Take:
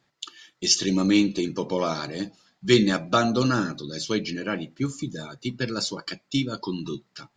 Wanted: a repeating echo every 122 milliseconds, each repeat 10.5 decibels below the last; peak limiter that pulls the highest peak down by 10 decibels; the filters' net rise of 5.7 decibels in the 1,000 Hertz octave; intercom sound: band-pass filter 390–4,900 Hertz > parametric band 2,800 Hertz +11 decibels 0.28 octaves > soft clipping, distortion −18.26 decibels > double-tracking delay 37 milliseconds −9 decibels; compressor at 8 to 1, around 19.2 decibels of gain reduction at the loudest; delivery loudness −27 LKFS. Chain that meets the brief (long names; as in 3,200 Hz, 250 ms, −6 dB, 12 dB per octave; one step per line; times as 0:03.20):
parametric band 1,000 Hz +8 dB
downward compressor 8 to 1, threshold −32 dBFS
brickwall limiter −26 dBFS
band-pass filter 390–4,900 Hz
parametric band 2,800 Hz +11 dB 0.28 octaves
repeating echo 122 ms, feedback 30%, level −10.5 dB
soft clipping −30.5 dBFS
double-tracking delay 37 ms −9 dB
level +13.5 dB